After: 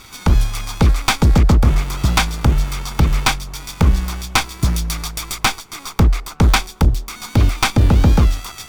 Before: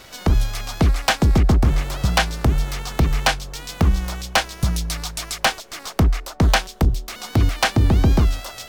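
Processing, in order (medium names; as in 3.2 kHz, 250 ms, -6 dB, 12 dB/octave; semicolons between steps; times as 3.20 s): comb filter that takes the minimum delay 0.87 ms; trim +4 dB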